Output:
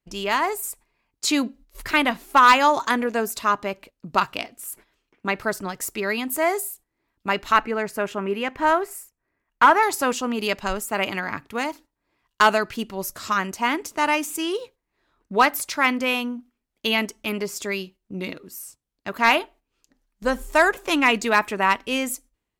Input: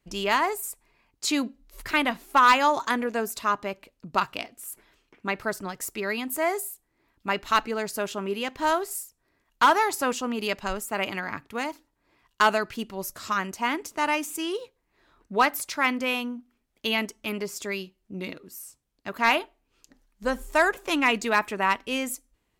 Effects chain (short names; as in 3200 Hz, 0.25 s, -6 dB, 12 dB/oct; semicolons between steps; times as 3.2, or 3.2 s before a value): 7.52–9.83 resonant high shelf 2900 Hz -7.5 dB, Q 1.5; gate -49 dBFS, range -10 dB; AGC gain up to 4 dB